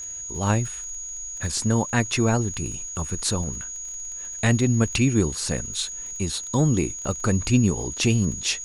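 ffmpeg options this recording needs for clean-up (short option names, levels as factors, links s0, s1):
-af "adeclick=t=4,bandreject=f=6700:w=30,agate=range=0.0891:threshold=0.0447"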